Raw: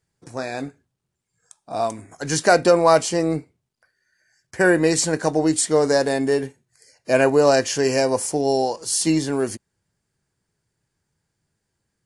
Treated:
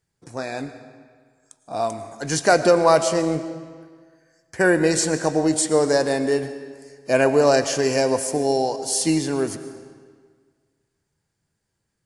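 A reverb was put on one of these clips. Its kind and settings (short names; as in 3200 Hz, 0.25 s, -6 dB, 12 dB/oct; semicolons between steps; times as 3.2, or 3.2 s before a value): digital reverb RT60 1.7 s, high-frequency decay 0.85×, pre-delay 70 ms, DRR 11 dB; gain -1 dB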